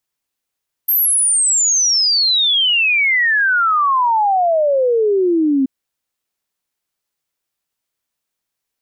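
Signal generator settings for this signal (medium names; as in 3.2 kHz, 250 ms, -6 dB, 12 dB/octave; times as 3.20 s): log sweep 13 kHz -> 260 Hz 4.78 s -11.5 dBFS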